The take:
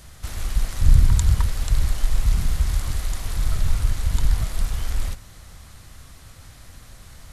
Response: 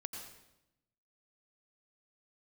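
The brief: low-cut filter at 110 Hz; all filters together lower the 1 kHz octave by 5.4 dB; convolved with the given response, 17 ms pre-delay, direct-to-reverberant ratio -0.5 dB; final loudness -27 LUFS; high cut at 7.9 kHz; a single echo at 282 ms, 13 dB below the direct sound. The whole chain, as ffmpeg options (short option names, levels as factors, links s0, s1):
-filter_complex "[0:a]highpass=110,lowpass=7900,equalizer=f=1000:t=o:g=-7,aecho=1:1:282:0.224,asplit=2[s0][s1];[1:a]atrim=start_sample=2205,adelay=17[s2];[s1][s2]afir=irnorm=-1:irlink=0,volume=1.33[s3];[s0][s3]amix=inputs=2:normalize=0,volume=1.26"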